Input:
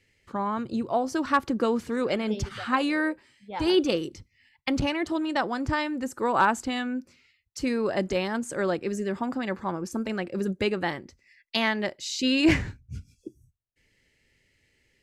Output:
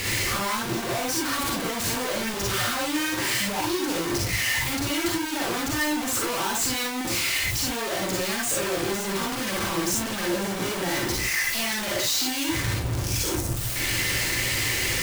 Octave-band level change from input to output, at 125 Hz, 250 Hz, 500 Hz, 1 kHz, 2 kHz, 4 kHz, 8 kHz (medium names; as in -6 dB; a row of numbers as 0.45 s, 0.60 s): +6.0 dB, -2.0 dB, -1.5 dB, -1.0 dB, +5.5 dB, +8.0 dB, +17.0 dB